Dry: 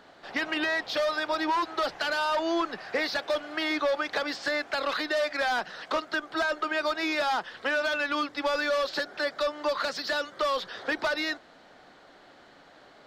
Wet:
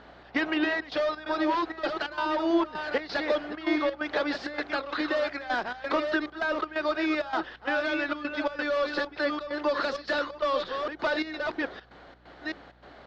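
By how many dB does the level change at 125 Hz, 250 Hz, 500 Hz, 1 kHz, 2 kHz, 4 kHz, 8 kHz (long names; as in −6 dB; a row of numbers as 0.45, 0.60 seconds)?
can't be measured, +5.0 dB, +0.5 dB, −1.0 dB, −1.5 dB, −4.5 dB, below −10 dB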